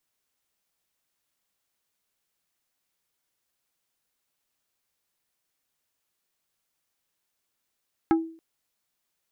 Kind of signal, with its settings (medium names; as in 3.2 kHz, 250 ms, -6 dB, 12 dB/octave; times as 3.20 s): wood hit plate, length 0.28 s, lowest mode 326 Hz, decay 0.45 s, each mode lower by 5.5 dB, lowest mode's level -15 dB